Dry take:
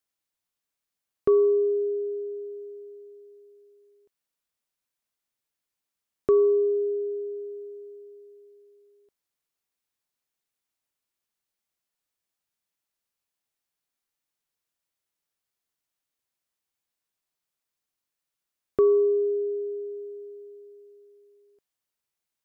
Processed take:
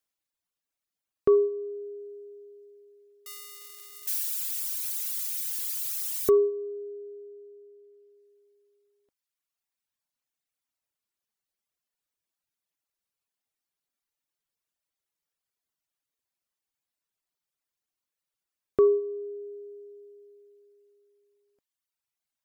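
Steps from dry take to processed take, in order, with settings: 3.26–6.3 switching spikes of -24 dBFS; reverb removal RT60 1.9 s

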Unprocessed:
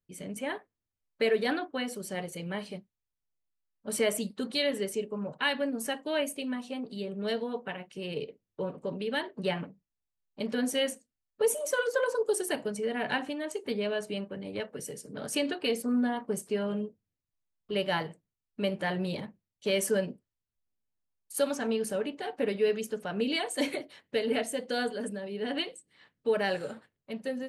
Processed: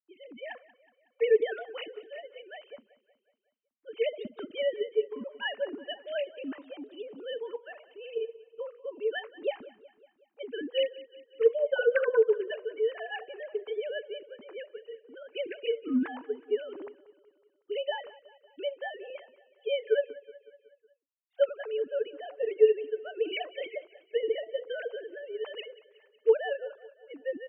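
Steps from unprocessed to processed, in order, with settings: sine-wave speech; 19.1–21.49 HPF 350 Hz 24 dB/oct; feedback echo 0.185 s, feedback 55%, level -19 dB

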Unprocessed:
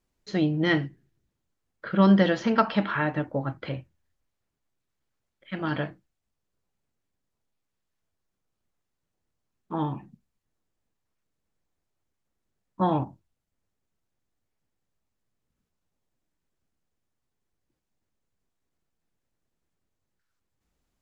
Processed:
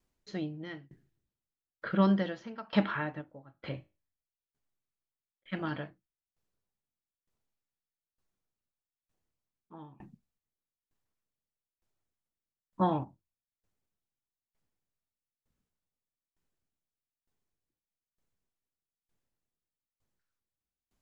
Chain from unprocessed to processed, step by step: 3.21–5.53 resonator 52 Hz, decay 0.35 s, harmonics all, mix 50%; dB-ramp tremolo decaying 1.1 Hz, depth 26 dB

